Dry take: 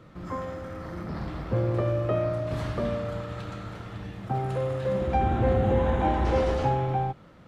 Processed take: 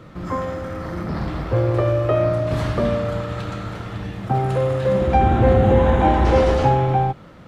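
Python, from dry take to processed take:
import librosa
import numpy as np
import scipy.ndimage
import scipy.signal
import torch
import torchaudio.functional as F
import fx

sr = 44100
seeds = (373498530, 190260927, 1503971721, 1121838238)

y = fx.peak_eq(x, sr, hz=200.0, db=-14.0, octaves=0.56, at=(1.48, 2.2))
y = y * 10.0 ** (8.5 / 20.0)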